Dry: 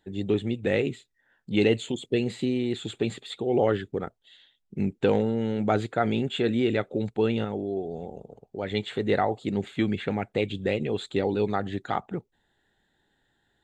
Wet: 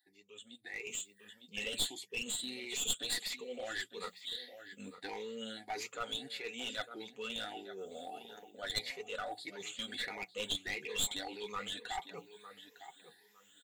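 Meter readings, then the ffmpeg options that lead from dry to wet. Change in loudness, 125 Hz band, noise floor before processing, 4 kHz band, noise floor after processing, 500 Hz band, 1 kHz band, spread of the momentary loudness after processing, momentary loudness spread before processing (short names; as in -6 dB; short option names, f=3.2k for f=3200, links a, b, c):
-12.0 dB, -27.5 dB, -73 dBFS, 0.0 dB, -66 dBFS, -19.5 dB, -12.5 dB, 16 LU, 10 LU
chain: -filter_complex "[0:a]afftfilt=real='re*pow(10,19/40*sin(2*PI*(0.79*log(max(b,1)*sr/1024/100)/log(2)-(1.6)*(pts-256)/sr)))':imag='im*pow(10,19/40*sin(2*PI*(0.79*log(max(b,1)*sr/1024/100)/log(2)-(1.6)*(pts-256)/sr)))':win_size=1024:overlap=0.75,areverse,acompressor=threshold=-30dB:ratio=8,areverse,adynamicequalizer=threshold=0.00501:dfrequency=130:dqfactor=0.83:tfrequency=130:tqfactor=0.83:attack=5:release=100:ratio=0.375:range=1.5:mode=cutabove:tftype=bell,asplit=2[a][b];[b]adelay=906,lowpass=f=3.5k:p=1,volume=-12.5dB,asplit=2[c][d];[d]adelay=906,lowpass=f=3.5k:p=1,volume=0.22,asplit=2[e][f];[f]adelay=906,lowpass=f=3.5k:p=1,volume=0.22[g];[c][e][g]amix=inputs=3:normalize=0[h];[a][h]amix=inputs=2:normalize=0,dynaudnorm=f=160:g=11:m=14dB,flanger=delay=6.7:depth=4.3:regen=-29:speed=0.32:shape=sinusoidal,aderivative,bandreject=f=60:t=h:w=6,bandreject=f=120:t=h:w=6,bandreject=f=180:t=h:w=6,aeval=exprs='clip(val(0),-1,0.0119)':c=same,aecho=1:1:4.1:0.34,volume=2dB"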